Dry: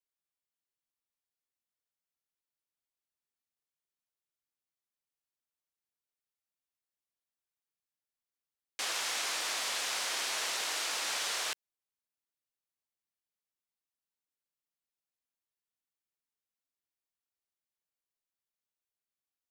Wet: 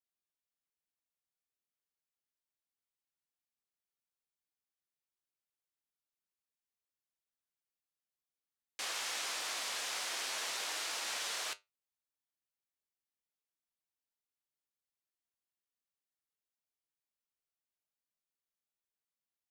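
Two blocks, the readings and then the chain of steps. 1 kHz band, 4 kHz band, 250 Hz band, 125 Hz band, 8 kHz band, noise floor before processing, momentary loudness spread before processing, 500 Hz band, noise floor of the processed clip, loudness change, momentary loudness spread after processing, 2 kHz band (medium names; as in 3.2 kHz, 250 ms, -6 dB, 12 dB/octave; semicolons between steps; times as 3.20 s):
-4.0 dB, -4.5 dB, -4.5 dB, no reading, -4.5 dB, under -85 dBFS, 5 LU, -4.0 dB, under -85 dBFS, -4.5 dB, 5 LU, -4.5 dB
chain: flange 0.18 Hz, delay 8.2 ms, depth 10 ms, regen +70%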